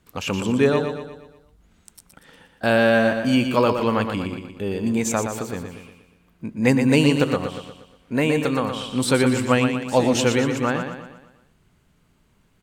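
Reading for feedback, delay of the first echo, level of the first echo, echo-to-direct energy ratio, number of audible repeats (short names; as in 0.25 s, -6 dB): 48%, 0.119 s, -7.0 dB, -6.0 dB, 5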